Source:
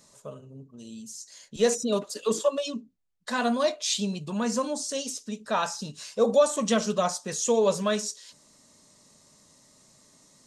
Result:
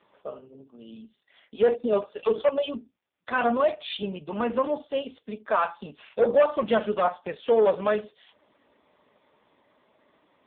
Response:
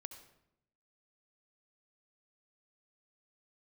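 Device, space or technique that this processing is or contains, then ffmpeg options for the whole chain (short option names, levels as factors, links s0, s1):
telephone: -af "highpass=340,lowpass=3200,asoftclip=type=tanh:threshold=0.112,volume=2.11" -ar 8000 -c:a libopencore_amrnb -b:a 5150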